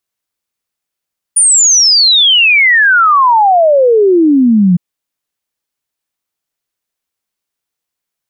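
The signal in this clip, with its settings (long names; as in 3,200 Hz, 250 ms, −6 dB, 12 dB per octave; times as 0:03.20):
exponential sine sweep 9,600 Hz → 170 Hz 3.41 s −4.5 dBFS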